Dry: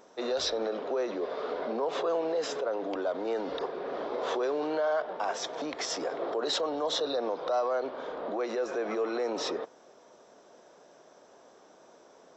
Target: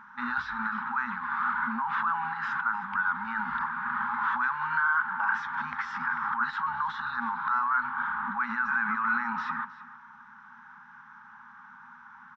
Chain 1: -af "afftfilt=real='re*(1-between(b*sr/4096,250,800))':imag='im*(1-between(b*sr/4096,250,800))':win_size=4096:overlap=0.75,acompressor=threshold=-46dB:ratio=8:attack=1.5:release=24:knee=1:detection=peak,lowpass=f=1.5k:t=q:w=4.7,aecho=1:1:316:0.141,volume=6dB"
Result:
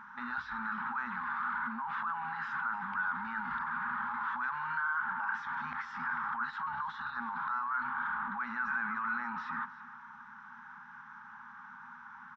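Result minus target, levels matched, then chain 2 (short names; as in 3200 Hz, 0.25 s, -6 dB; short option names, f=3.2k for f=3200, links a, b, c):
compressor: peak gain reduction +8 dB
-af "afftfilt=real='re*(1-between(b*sr/4096,250,800))':imag='im*(1-between(b*sr/4096,250,800))':win_size=4096:overlap=0.75,acompressor=threshold=-37dB:ratio=8:attack=1.5:release=24:knee=1:detection=peak,lowpass=f=1.5k:t=q:w=4.7,aecho=1:1:316:0.141,volume=6dB"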